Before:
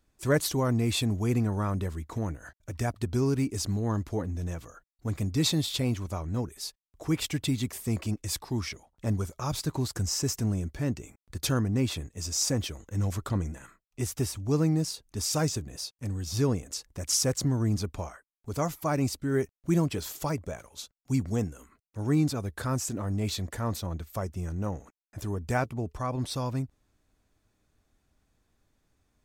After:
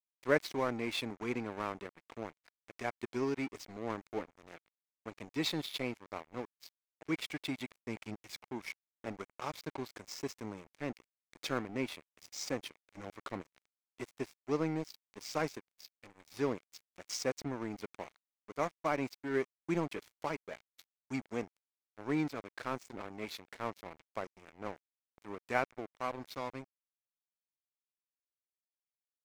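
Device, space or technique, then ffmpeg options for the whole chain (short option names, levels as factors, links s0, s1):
pocket radio on a weak battery: -filter_complex "[0:a]asettb=1/sr,asplit=3[s0][s1][s2];[s0]atrim=end=7.764[s3];[s1]atrim=start=7.76:end=8.51,asetpts=PTS-STARTPTS,afade=t=in:d=0.004:c=qsin,afade=t=out:st=0.746:d=0.004:c=qsin,asubboost=boost=8:cutoff=250[s4];[s2]atrim=start=8.506[s5];[s3][s4]acrossfade=d=0.004:c1=hsin:c2=qsin[s6];[s6][s5]acrossfade=d=0.004:c1=qsin:c2=hsin,highpass=300,lowpass=4000,aeval=exprs='sgn(val(0))*max(abs(val(0))-0.00944,0)':c=same,equalizer=f=2200:t=o:w=0.29:g=7,volume=0.794"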